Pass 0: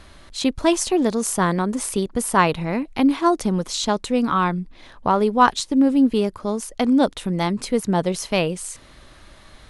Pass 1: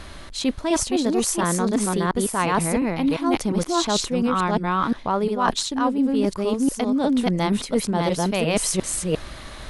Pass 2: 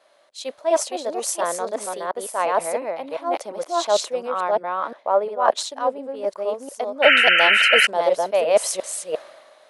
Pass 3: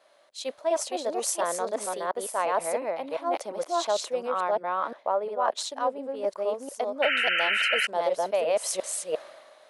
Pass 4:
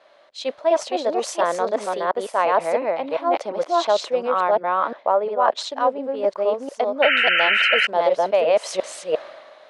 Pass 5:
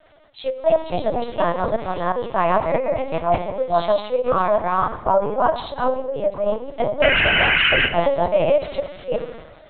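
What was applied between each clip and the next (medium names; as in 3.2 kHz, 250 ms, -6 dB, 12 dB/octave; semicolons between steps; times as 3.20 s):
chunks repeated in reverse 352 ms, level -1 dB; reverse; compression 10:1, threshold -25 dBFS, peak gain reduction 17.5 dB; reverse; trim +7 dB
painted sound noise, 7.02–7.87 s, 1.3–3.1 kHz -15 dBFS; resonant high-pass 590 Hz, resonance Q 4.4; three bands expanded up and down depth 70%; trim -3.5 dB
compression 6:1, threshold -19 dBFS, peak gain reduction 10 dB; trim -2.5 dB
low-pass 4.2 kHz 12 dB/octave; trim +7.5 dB
on a send at -5.5 dB: reverberation RT60 0.85 s, pre-delay 3 ms; on the sum: LPC vocoder at 8 kHz pitch kept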